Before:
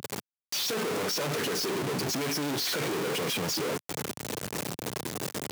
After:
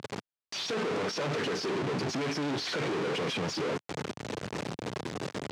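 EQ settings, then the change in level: air absorption 94 m; high shelf 7700 Hz -6 dB; 0.0 dB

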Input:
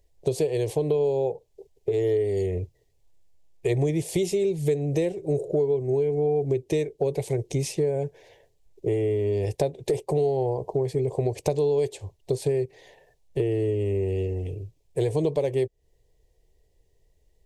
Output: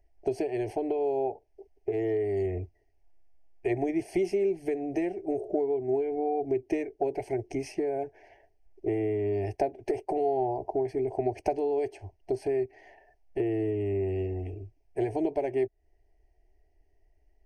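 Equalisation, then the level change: polynomial smoothing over 15 samples; bell 700 Hz +5.5 dB 0.38 oct; fixed phaser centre 750 Hz, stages 8; 0.0 dB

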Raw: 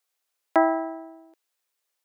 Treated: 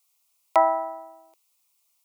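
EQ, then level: band shelf 1600 Hz +8.5 dB; high shelf 2800 Hz +11.5 dB; fixed phaser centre 690 Hz, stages 4; 0.0 dB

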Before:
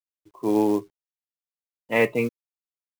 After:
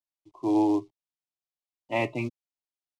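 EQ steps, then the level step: LPF 5300 Hz 12 dB/oct; fixed phaser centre 310 Hz, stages 8; 0.0 dB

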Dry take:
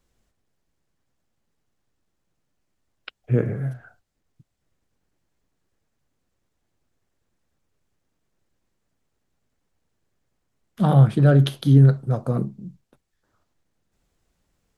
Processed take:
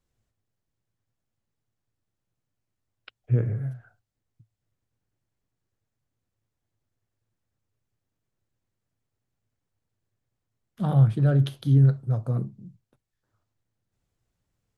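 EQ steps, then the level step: bell 110 Hz +13 dB 0.45 oct; -9.0 dB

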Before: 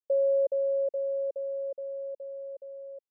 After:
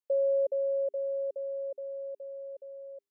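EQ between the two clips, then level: notches 50/100/150/200/250/300/350/400 Hz; -2.0 dB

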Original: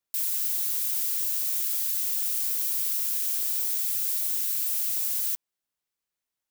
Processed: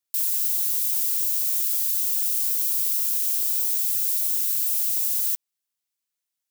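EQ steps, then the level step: high shelf 2200 Hz +11 dB; -7.0 dB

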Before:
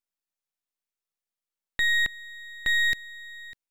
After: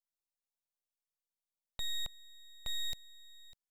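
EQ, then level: fixed phaser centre 750 Hz, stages 4; -5.5 dB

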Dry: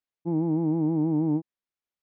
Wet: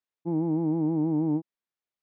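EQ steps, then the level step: air absorption 88 m; low shelf 120 Hz -6 dB; 0.0 dB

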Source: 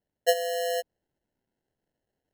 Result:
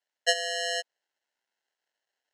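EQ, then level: HPF 1200 Hz 12 dB/oct; LPF 7600 Hz 24 dB/oct; +6.5 dB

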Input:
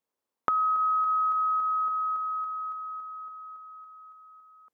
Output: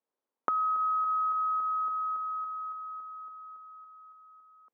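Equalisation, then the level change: HPF 220 Hz; LPF 1200 Hz 6 dB/oct; 0.0 dB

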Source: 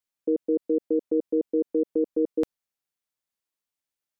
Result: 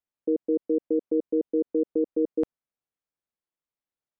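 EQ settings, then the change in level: LPF 1100 Hz 6 dB/oct; 0.0 dB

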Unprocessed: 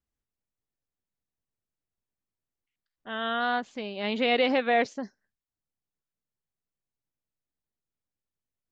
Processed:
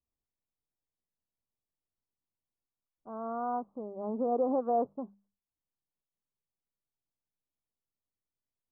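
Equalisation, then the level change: steep low-pass 1200 Hz 72 dB/oct; notches 50/100/150/200 Hz; -4.0 dB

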